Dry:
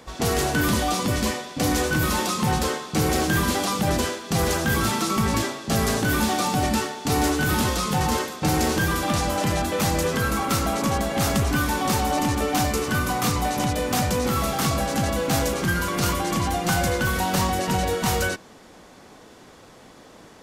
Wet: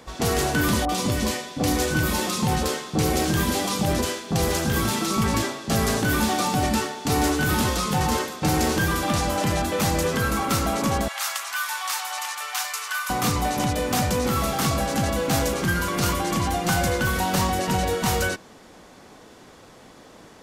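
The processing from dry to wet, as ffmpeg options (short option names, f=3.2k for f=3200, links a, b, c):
-filter_complex "[0:a]asettb=1/sr,asplit=3[a][b][c];[a]atrim=end=0.854[d];[b]atrim=start=0.85:end=5.24,asetpts=PTS-STARTPTS,afade=t=in:d=0.004:c=qsin,afade=t=out:st=4.386:d=0.004:c=qsin,acrossover=split=1300[e][f];[f]adelay=40[g];[e][g]amix=inputs=2:normalize=0,atrim=end_sample=193599[h];[c]atrim=start=5.236[i];[d][h]acrossfade=d=0.004:c1=hsin:c2=qsin[j];[j][i]acrossfade=d=0.004:c1=qsin:c2=hsin,asettb=1/sr,asplit=3[k][l][m];[k]atrim=end=11.084[n];[l]atrim=start=11.08:end=13.1,asetpts=PTS-STARTPTS,afade=t=in:d=0.004:c=qsin,afade=t=out:st=2.016:d=0.004:c=qsin,highpass=f=1k:w=0.5412,highpass=f=1k:w=1.3066[o];[m]atrim=start=13.096[p];[n][o]acrossfade=d=0.004:c1=hsin:c2=qsin[q];[q][p]acrossfade=d=0.004:c1=qsin:c2=hsin"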